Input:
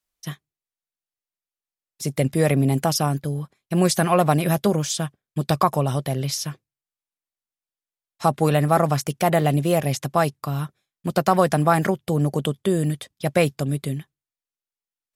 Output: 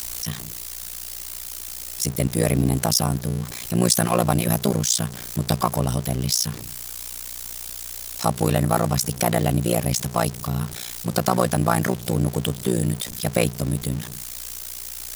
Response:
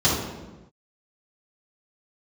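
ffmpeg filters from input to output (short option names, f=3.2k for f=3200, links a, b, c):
-af "aeval=exprs='val(0)+0.5*0.0398*sgn(val(0))':c=same,tremolo=f=60:d=0.974,bass=f=250:g=3,treble=f=4k:g=9"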